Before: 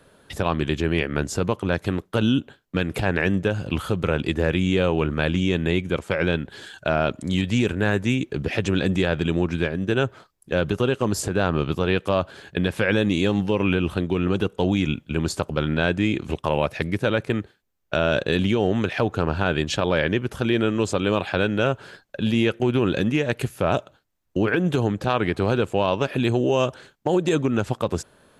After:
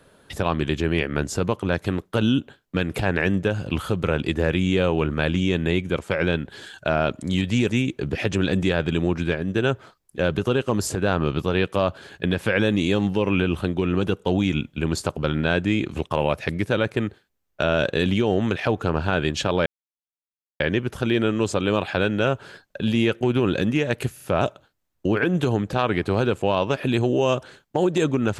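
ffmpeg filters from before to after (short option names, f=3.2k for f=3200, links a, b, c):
-filter_complex "[0:a]asplit=5[a][b][c][d][e];[a]atrim=end=7.692[f];[b]atrim=start=8.018:end=19.99,asetpts=PTS-STARTPTS,afade=t=out:st=11.968:d=0.004:c=hsin,apad=pad_dur=0.94[g];[c]atrim=start=19.99:end=23.572,asetpts=PTS-STARTPTS,afade=t=in:d=0.004:c=hsin[h];[d]atrim=start=23.528:end=23.572[i];[e]atrim=start=23.528[j];[g][h]concat=n=2:v=0:a=1[k];[f][k]acrossfade=d=0.004:c1=hsin:c2=hsin[l];[l][i]acrossfade=d=0.004:c1=hsin:c2=hsin[m];[m][j]acrossfade=d=0.004:c1=hsin:c2=hsin"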